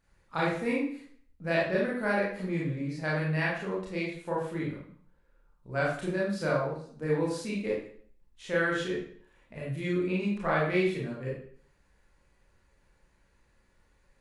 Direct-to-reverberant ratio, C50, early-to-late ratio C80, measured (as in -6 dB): -5.5 dB, 1.5 dB, 6.5 dB